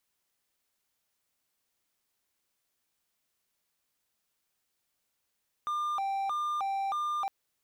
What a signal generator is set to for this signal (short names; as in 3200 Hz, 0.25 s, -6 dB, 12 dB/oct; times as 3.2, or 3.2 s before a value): siren hi-lo 784–1200 Hz 1.6/s triangle -27 dBFS 1.61 s